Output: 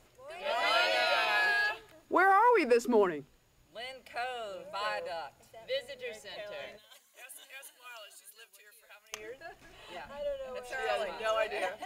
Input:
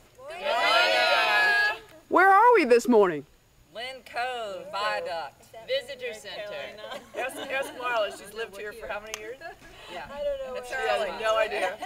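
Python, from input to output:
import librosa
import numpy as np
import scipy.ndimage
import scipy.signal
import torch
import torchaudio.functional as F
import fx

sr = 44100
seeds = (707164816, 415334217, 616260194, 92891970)

y = fx.pre_emphasis(x, sr, coefficient=0.97, at=(6.77, 9.12), fade=0.02)
y = fx.hum_notches(y, sr, base_hz=50, count=5)
y = y * 10.0 ** (-6.5 / 20.0)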